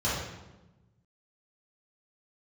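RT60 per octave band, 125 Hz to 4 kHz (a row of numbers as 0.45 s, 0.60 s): 1.8 s, 1.5 s, 1.1 s, 1.0 s, 0.85 s, 0.75 s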